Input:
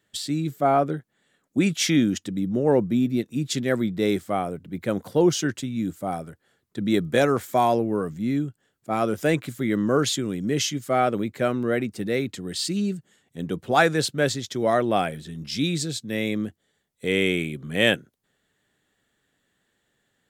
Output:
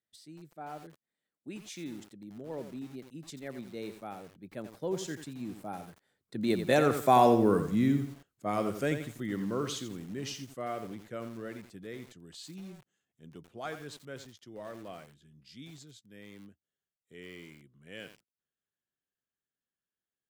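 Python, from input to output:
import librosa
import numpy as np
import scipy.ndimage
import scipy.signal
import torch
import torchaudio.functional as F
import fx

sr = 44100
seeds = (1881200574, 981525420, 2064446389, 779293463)

y = fx.doppler_pass(x, sr, speed_mps=22, closest_m=11.0, pass_at_s=7.47)
y = fx.echo_crushed(y, sr, ms=87, feedback_pct=35, bits=8, wet_db=-8.5)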